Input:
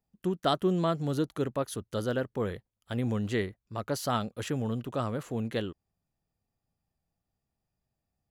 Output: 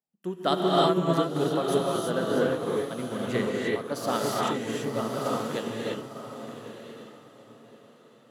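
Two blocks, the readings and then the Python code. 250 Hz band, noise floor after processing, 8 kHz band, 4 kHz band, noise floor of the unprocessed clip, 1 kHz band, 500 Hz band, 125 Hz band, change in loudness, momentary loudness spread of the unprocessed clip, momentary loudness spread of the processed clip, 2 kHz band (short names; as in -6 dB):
+3.0 dB, -56 dBFS, +5.0 dB, +6.0 dB, under -85 dBFS, +6.5 dB, +6.0 dB, -1.0 dB, +4.5 dB, 8 LU, 17 LU, +5.5 dB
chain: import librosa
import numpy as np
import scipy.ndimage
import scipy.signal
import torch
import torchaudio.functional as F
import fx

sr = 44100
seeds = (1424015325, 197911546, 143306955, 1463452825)

y = scipy.signal.sosfilt(scipy.signal.butter(2, 210.0, 'highpass', fs=sr, output='sos'), x)
y = fx.echo_diffused(y, sr, ms=1063, feedback_pct=40, wet_db=-6.5)
y = fx.rev_gated(y, sr, seeds[0], gate_ms=370, shape='rising', drr_db=-3.5)
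y = fx.upward_expand(y, sr, threshold_db=-42.0, expansion=1.5)
y = F.gain(torch.from_numpy(y), 2.5).numpy()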